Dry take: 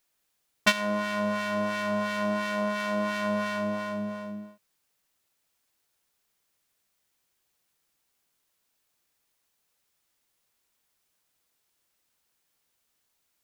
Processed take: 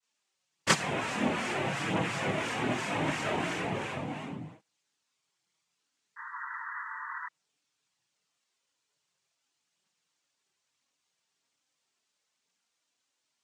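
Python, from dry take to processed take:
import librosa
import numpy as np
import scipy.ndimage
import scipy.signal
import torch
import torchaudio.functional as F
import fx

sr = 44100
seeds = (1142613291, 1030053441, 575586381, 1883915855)

y = fx.noise_vocoder(x, sr, seeds[0], bands=4)
y = fx.spec_paint(y, sr, seeds[1], shape='noise', start_s=6.16, length_s=1.1, low_hz=890.0, high_hz=2000.0, level_db=-38.0)
y = fx.chorus_voices(y, sr, voices=4, hz=0.19, base_ms=24, depth_ms=4.1, mix_pct=70)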